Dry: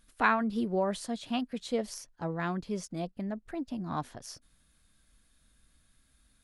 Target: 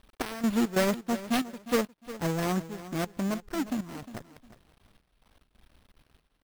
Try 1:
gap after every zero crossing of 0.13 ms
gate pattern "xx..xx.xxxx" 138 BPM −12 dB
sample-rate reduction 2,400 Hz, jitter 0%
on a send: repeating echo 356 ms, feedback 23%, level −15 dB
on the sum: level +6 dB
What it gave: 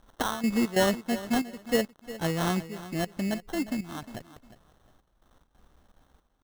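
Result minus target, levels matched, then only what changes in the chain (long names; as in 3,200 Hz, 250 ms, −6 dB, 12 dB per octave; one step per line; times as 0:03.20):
gap after every zero crossing: distortion −9 dB; sample-rate reduction: distortion +6 dB
change: gap after every zero crossing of 0.43 ms
change: sample-rate reduction 7,000 Hz, jitter 0%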